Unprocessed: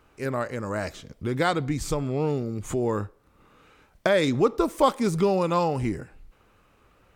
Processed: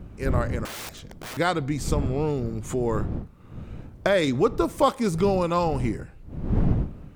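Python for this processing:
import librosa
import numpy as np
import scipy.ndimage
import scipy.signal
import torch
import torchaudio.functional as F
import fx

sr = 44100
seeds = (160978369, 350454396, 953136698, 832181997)

y = fx.dmg_wind(x, sr, seeds[0], corner_hz=150.0, level_db=-30.0)
y = fx.overflow_wrap(y, sr, gain_db=31.5, at=(0.65, 1.37))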